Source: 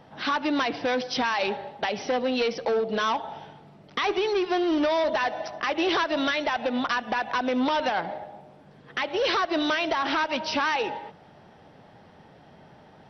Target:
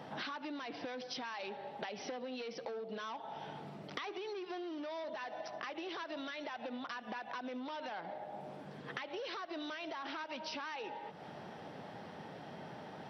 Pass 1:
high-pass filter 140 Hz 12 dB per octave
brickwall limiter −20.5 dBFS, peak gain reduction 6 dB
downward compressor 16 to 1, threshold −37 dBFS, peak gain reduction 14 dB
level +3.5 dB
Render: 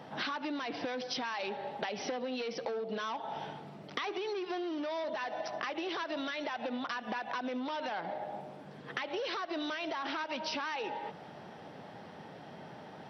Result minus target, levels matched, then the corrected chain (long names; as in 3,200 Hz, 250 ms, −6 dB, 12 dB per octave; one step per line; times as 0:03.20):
downward compressor: peak gain reduction −6 dB
high-pass filter 140 Hz 12 dB per octave
brickwall limiter −20.5 dBFS, peak gain reduction 6 dB
downward compressor 16 to 1, threshold −43.5 dBFS, peak gain reduction 20 dB
level +3.5 dB